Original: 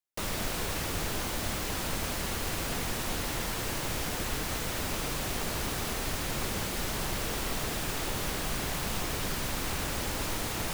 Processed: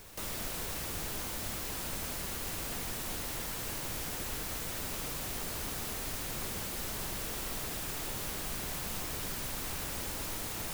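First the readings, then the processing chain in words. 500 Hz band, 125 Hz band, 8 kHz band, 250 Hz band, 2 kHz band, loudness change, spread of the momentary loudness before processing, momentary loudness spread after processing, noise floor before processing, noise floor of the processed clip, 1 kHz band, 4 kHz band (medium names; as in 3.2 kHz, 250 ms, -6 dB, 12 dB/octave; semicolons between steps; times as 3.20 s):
-7.5 dB, -7.5 dB, -3.0 dB, -7.5 dB, -7.0 dB, -4.0 dB, 0 LU, 0 LU, -34 dBFS, -39 dBFS, -7.0 dB, -5.5 dB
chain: treble shelf 7.5 kHz +8 dB; on a send: reverse echo 630 ms -13.5 dB; on the sum: trim -7.5 dB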